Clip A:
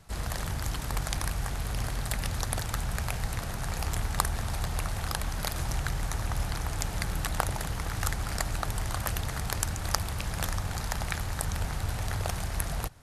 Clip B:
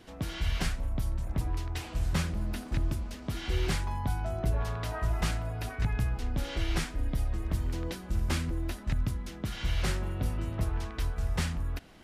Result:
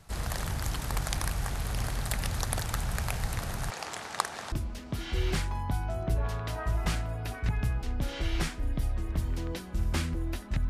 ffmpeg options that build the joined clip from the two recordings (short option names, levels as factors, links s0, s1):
-filter_complex "[0:a]asettb=1/sr,asplit=3[s0][s1][s2];[s0]atrim=end=3.704[s3];[s1]atrim=start=3.7:end=4.52,asetpts=PTS-STARTPTS,afade=t=in:d=0.004:c=qsin,afade=t=out:st=0.816:d=0.004:c=qsin,highpass=350,lowpass=7400[s4];[s2]atrim=start=4.516[s5];[s3][s4]acrossfade=d=0.004:c1=hsin:c2=qsin[s6];[s6][s5]acrossfade=d=0.004:c1=qsin:c2=hsin,apad=whole_dur=10.69,atrim=end=10.69,atrim=end=4.522[s7];[1:a]atrim=start=2.878:end=9.05[s8];[s7][s8]acrossfade=d=0.004:c1=hsin:c2=hsin"